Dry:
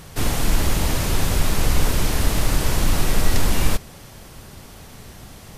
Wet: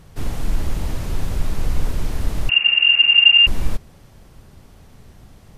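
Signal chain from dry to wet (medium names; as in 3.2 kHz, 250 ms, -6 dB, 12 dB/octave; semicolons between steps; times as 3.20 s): tilt EQ -1.5 dB/octave; 2.49–3.47 s: frequency inversion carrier 2.8 kHz; trim -8.5 dB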